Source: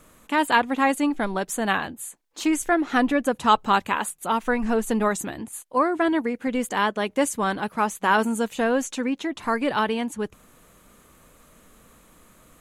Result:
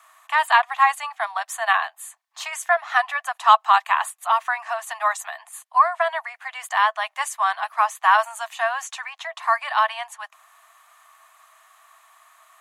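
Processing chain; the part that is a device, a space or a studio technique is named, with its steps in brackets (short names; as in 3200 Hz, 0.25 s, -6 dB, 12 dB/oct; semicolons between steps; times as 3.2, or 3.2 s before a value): Chebyshev high-pass 650 Hz, order 8; inside a helmet (high shelf 5300 Hz -5 dB; small resonant body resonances 350/1100/1800 Hz, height 8 dB, ringing for 20 ms); gain +2.5 dB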